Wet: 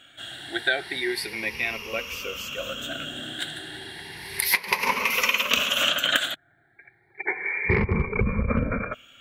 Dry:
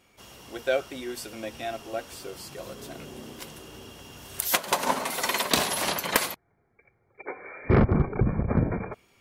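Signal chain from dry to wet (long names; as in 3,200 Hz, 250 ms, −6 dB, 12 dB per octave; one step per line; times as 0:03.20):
rippled gain that drifts along the octave scale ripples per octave 0.84, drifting +0.32 Hz, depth 16 dB
flat-topped bell 2,400 Hz +12 dB
downward compressor 6 to 1, threshold −19 dBFS, peak gain reduction 12.5 dB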